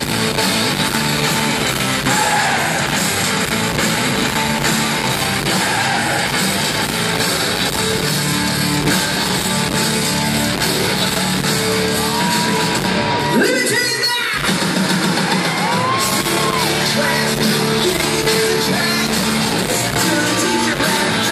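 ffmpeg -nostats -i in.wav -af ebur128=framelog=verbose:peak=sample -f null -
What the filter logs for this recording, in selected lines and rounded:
Integrated loudness:
  I:         -15.5 LUFS
  Threshold: -25.5 LUFS
Loudness range:
  LRA:         0.8 LU
  Threshold: -35.5 LUFS
  LRA low:   -15.9 LUFS
  LRA high:  -15.1 LUFS
Sample peak:
  Peak:       -4.1 dBFS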